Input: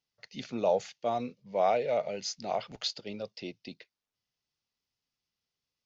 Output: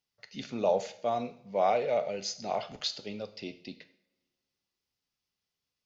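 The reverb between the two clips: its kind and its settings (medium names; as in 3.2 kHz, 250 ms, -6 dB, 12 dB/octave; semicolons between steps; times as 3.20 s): two-slope reverb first 0.54 s, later 2.1 s, from -25 dB, DRR 9 dB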